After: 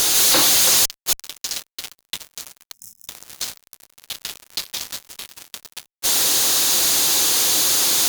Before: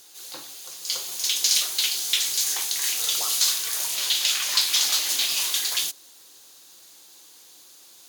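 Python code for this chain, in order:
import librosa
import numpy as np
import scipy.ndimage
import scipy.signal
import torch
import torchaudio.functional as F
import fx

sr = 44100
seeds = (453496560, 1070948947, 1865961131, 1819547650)

y = fx.gate_flip(x, sr, shuts_db=-21.0, range_db=-38)
y = fx.fuzz(y, sr, gain_db=55.0, gate_db=-56.0)
y = fx.spec_box(y, sr, start_s=2.73, length_s=0.35, low_hz=230.0, high_hz=5100.0, gain_db=-21)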